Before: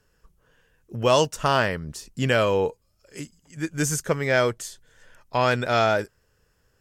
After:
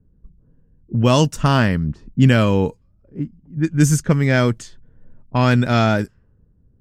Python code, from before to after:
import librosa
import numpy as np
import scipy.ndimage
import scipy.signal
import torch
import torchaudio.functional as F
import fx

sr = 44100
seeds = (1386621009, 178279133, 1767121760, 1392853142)

y = fx.env_lowpass(x, sr, base_hz=420.0, full_db=-21.0)
y = fx.low_shelf_res(y, sr, hz=340.0, db=9.5, q=1.5)
y = y * librosa.db_to_amplitude(2.5)